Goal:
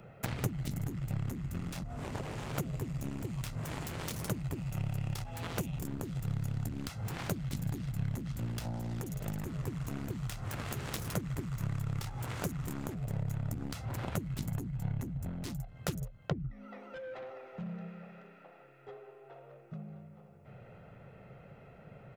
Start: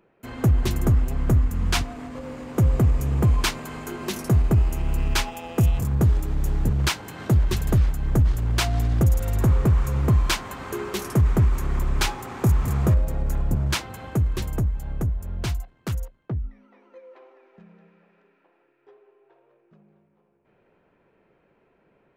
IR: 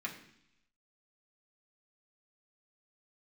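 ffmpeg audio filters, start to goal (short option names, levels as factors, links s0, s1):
-filter_complex "[0:a]acrossover=split=190|1800|4600[s0][s1][s2][s3];[s0]acompressor=threshold=0.0282:ratio=4[s4];[s1]acompressor=threshold=0.00794:ratio=4[s5];[s2]acompressor=threshold=0.00282:ratio=4[s6];[s3]acompressor=threshold=0.00631:ratio=4[s7];[s4][s5][s6][s7]amix=inputs=4:normalize=0,aecho=1:1:1.5:0.6,acompressor=threshold=0.01:ratio=12,aeval=exprs='0.0422*(cos(1*acos(clip(val(0)/0.0422,-1,1)))-cos(1*PI/2))+0.0119*(cos(7*acos(clip(val(0)/0.0422,-1,1)))-cos(7*PI/2))':c=same,equalizer=f=120:w=1.3:g=12.5,volume=2.24"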